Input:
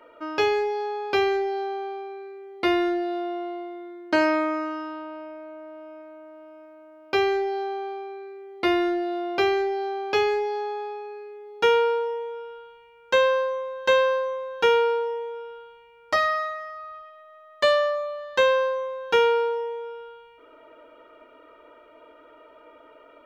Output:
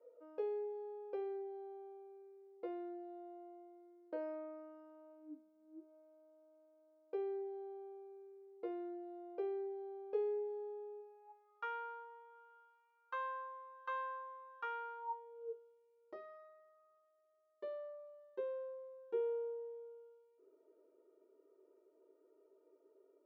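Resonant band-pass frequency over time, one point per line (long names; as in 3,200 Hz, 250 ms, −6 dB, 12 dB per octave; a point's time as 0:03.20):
resonant band-pass, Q 19
0:05.12 490 Hz
0:05.53 180 Hz
0:05.94 470 Hz
0:11.00 470 Hz
0:11.49 1,200 Hz
0:14.96 1,200 Hz
0:15.59 390 Hz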